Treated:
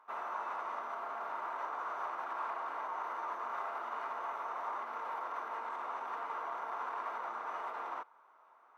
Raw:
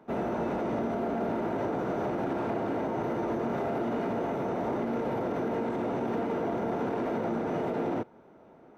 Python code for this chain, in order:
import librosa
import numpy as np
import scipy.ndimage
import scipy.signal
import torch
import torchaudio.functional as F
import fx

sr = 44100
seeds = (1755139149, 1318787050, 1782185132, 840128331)

y = fx.highpass_res(x, sr, hz=1100.0, q=5.6)
y = F.gain(torch.from_numpy(y), -8.0).numpy()